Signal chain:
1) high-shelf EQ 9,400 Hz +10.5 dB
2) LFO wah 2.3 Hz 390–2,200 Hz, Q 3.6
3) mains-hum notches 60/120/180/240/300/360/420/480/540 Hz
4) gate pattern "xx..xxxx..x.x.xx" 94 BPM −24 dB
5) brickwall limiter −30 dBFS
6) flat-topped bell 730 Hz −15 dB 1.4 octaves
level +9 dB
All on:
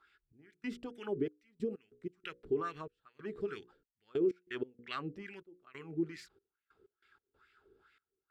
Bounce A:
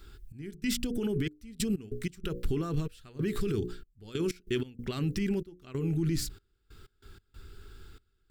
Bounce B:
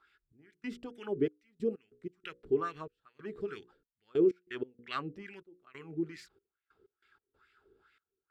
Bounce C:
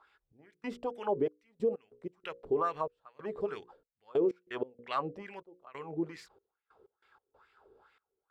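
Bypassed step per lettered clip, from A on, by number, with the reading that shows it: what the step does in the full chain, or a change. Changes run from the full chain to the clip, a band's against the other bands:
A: 2, 125 Hz band +13.5 dB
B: 5, change in crest factor +1.5 dB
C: 6, 1 kHz band +9.0 dB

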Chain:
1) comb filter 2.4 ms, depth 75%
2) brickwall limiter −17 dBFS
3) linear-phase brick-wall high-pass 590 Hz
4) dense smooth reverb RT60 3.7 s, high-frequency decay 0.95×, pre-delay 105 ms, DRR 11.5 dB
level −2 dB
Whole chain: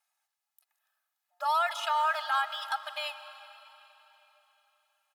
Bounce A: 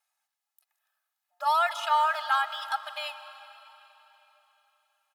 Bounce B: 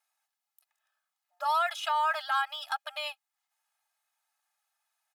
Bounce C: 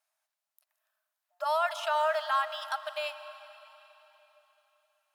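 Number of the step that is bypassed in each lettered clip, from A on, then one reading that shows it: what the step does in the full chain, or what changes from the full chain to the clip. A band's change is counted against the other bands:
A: 2, change in momentary loudness spread −3 LU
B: 4, change in momentary loudness spread −7 LU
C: 1, 500 Hz band +9.5 dB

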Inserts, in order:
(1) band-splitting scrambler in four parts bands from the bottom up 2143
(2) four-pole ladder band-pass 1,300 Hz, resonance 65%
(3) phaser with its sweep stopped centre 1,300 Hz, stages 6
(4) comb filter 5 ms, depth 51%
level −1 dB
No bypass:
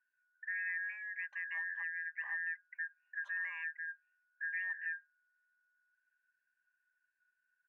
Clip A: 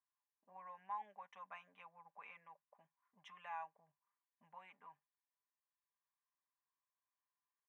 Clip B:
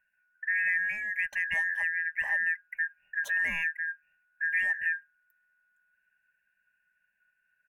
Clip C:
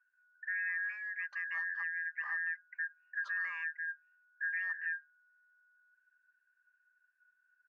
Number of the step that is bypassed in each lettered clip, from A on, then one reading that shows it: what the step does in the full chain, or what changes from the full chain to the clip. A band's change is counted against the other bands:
1, change in crest factor +8.5 dB
2, change in momentary loudness spread +1 LU
3, change in integrated loudness +2.5 LU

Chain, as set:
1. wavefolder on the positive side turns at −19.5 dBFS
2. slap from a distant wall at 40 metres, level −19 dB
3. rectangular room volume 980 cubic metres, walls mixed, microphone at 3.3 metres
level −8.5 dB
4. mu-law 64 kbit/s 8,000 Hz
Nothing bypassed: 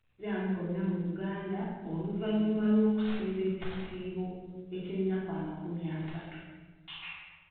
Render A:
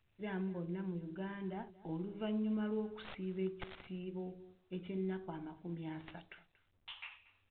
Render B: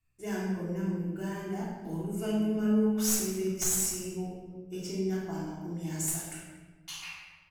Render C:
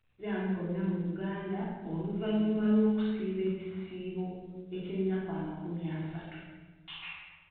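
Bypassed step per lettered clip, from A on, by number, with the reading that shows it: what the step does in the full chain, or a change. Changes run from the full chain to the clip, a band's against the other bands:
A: 3, change in crest factor −2.5 dB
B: 4, change in crest factor +1.5 dB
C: 1, distortion level −16 dB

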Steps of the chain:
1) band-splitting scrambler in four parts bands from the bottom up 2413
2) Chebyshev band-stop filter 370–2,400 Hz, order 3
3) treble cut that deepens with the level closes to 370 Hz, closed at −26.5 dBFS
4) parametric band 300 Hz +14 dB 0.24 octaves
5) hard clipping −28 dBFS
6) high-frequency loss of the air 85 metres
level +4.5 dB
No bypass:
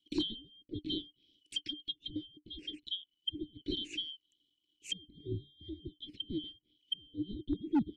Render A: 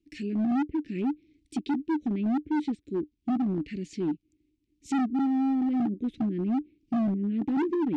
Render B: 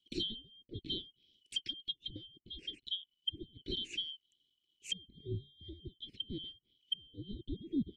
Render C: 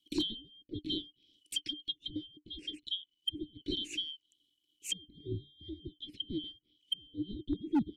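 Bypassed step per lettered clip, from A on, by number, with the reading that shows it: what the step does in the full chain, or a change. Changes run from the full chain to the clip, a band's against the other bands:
1, 250 Hz band +2.5 dB
4, 250 Hz band −6.0 dB
6, 8 kHz band +7.5 dB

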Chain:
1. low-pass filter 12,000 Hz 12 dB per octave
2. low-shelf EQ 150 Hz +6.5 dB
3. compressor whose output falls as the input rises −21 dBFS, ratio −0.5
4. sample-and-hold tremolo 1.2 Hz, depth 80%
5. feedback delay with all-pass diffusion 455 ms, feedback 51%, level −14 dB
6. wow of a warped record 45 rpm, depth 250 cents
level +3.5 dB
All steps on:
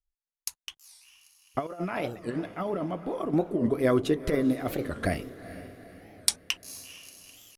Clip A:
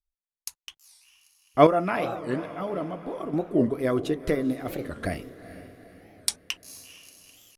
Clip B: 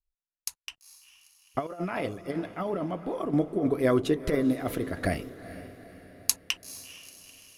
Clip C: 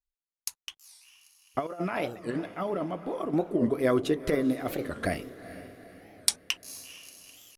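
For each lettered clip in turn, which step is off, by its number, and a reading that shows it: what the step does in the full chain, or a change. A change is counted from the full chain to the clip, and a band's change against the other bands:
3, change in crest factor −2.5 dB
6, 4 kHz band −2.0 dB
2, 125 Hz band −3.0 dB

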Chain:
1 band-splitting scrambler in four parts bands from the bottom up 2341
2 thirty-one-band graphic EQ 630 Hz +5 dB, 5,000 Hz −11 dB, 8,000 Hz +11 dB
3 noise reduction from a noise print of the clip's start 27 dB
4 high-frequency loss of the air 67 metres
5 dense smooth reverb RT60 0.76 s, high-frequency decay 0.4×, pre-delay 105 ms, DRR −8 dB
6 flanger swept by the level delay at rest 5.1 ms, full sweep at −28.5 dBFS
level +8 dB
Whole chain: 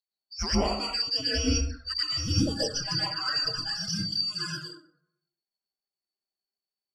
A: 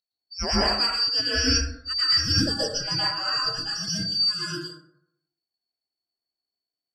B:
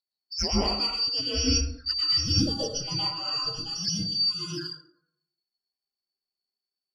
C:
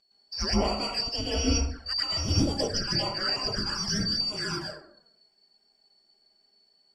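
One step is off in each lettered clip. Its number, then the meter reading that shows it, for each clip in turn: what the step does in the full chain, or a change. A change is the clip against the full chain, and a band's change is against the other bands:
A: 6, 125 Hz band −4.0 dB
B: 2, 2 kHz band −6.0 dB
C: 3, 500 Hz band +1.5 dB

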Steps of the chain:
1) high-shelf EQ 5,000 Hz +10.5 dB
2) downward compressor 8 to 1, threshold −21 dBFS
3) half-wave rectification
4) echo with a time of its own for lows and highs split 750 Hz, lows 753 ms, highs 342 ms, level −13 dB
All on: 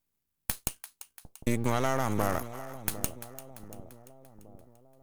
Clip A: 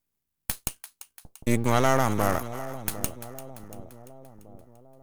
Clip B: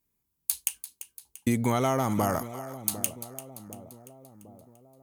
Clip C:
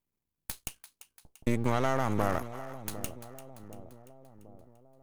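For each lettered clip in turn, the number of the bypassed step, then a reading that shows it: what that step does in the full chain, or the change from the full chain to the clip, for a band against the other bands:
2, average gain reduction 4.0 dB
3, distortion level −2 dB
1, 8 kHz band −6.0 dB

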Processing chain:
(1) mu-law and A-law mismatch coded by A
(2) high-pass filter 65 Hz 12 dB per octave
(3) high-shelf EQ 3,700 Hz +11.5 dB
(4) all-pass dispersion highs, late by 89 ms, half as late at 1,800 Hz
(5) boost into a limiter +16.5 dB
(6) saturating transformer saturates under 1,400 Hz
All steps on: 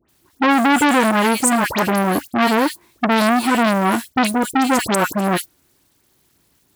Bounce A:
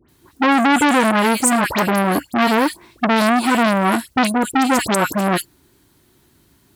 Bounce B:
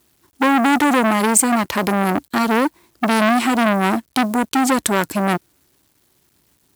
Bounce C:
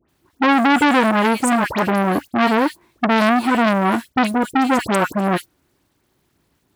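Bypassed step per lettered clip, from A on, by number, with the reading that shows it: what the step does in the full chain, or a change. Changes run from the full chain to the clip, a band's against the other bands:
1, distortion level −25 dB
4, 8 kHz band +3.0 dB
3, 8 kHz band −8.0 dB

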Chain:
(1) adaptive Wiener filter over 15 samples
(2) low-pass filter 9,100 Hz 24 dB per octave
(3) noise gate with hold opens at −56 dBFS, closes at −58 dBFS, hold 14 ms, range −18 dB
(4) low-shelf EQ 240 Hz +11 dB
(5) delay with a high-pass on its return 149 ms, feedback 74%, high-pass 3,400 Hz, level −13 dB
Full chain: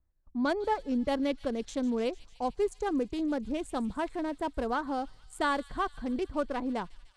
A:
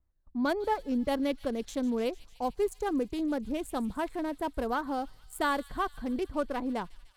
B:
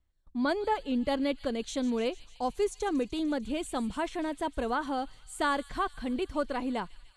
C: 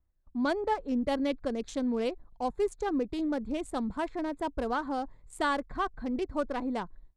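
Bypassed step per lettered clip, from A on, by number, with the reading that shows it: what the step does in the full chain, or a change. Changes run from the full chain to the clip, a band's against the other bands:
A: 2, 8 kHz band +2.0 dB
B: 1, 8 kHz band +5.0 dB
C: 5, echo-to-direct ratio −20.5 dB to none audible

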